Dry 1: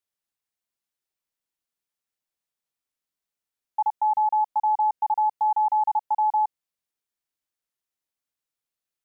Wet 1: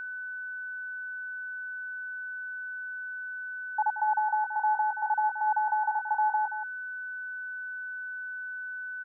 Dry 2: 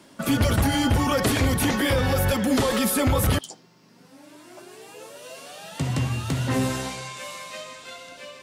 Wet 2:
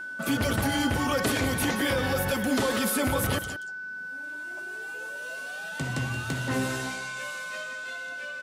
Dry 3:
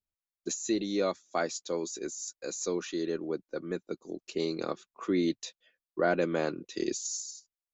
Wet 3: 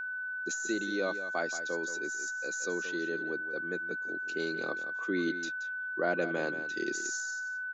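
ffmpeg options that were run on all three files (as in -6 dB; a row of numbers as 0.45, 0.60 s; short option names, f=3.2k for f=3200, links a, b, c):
-af "lowshelf=f=87:g=-12,aecho=1:1:177:0.266,aeval=exprs='val(0)+0.0282*sin(2*PI*1500*n/s)':c=same,volume=-3.5dB"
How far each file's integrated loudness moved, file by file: -7.5, -5.5, -0.5 LU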